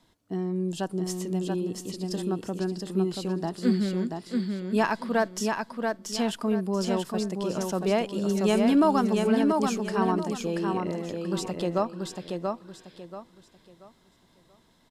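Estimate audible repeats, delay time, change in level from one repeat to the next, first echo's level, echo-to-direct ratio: 3, 683 ms, -10.5 dB, -4.0 dB, -3.5 dB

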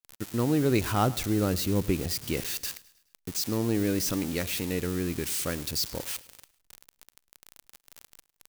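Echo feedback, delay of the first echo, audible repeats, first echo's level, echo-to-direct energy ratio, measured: 48%, 105 ms, 3, -20.0 dB, -19.0 dB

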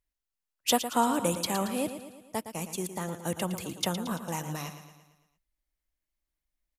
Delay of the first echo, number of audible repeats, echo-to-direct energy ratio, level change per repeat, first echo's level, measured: 113 ms, 5, -9.0 dB, -5.5 dB, -10.5 dB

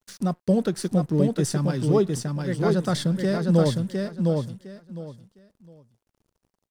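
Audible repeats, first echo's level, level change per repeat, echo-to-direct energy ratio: 3, -3.5 dB, -13.5 dB, -3.5 dB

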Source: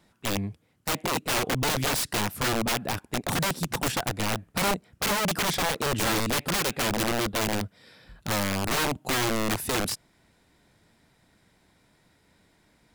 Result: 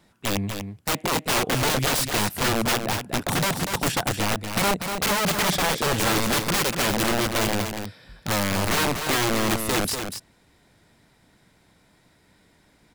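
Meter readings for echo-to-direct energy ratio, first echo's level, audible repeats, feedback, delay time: -7.0 dB, -7.0 dB, 1, no regular repeats, 242 ms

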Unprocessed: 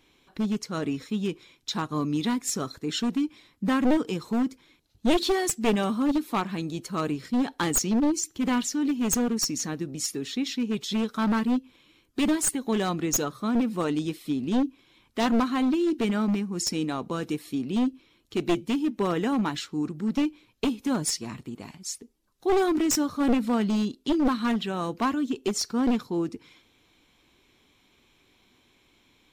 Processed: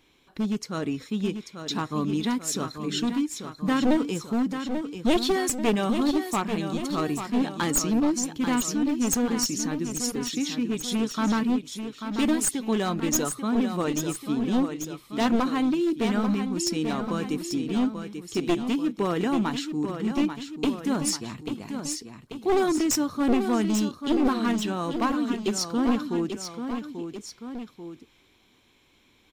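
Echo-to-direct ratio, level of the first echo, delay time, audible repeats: -6.5 dB, -8.0 dB, 839 ms, 2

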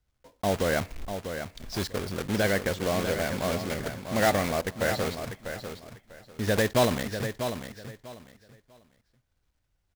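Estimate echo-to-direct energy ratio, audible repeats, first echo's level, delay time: -8.5 dB, 3, -8.5 dB, 645 ms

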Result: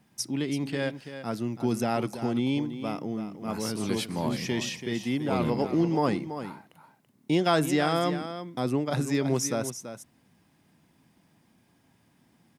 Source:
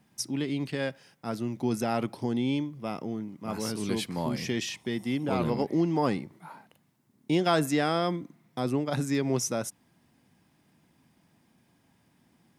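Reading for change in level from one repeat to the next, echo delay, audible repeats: no regular repeats, 333 ms, 1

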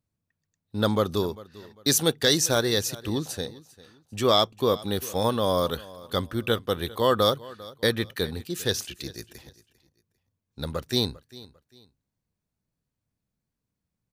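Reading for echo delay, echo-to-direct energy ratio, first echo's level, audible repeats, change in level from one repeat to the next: 398 ms, -19.5 dB, -20.0 dB, 2, -10.5 dB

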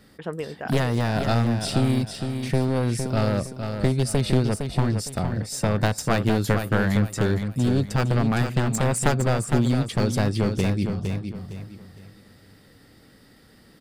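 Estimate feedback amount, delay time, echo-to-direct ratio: 31%, 460 ms, -6.5 dB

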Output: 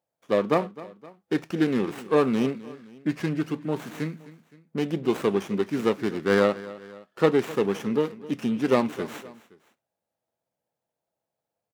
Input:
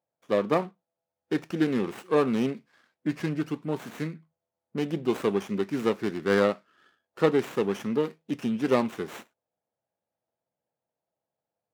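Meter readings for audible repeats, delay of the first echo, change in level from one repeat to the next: 2, 259 ms, -6.0 dB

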